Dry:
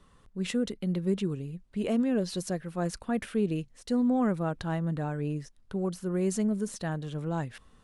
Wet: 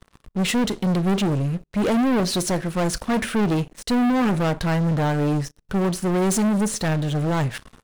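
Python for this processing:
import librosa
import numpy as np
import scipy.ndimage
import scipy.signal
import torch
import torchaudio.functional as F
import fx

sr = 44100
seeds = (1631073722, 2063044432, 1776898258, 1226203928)

y = fx.rev_double_slope(x, sr, seeds[0], early_s=0.3, late_s=1.6, knee_db=-27, drr_db=14.5)
y = fx.leveller(y, sr, passes=5)
y = fx.upward_expand(y, sr, threshold_db=-24.0, expansion=1.5)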